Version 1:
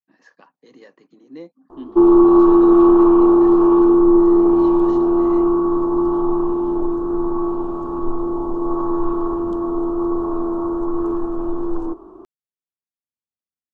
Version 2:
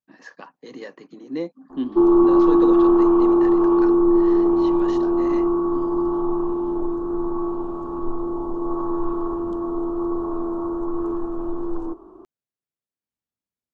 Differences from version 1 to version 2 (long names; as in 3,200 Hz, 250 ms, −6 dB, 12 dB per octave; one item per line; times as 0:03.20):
speech +9.0 dB
background −4.0 dB